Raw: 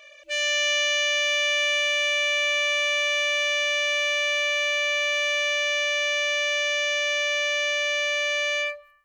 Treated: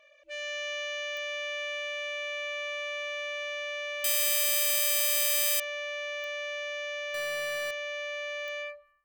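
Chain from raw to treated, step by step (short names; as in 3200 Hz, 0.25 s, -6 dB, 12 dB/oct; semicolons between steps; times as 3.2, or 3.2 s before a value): 7.14–7.71 half-waves squared off; high shelf 2500 Hz -11.5 dB; 4.04–5.6 careless resampling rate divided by 8×, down none, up zero stuff; pops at 1.17/6.24/8.48, -21 dBFS; gain -7 dB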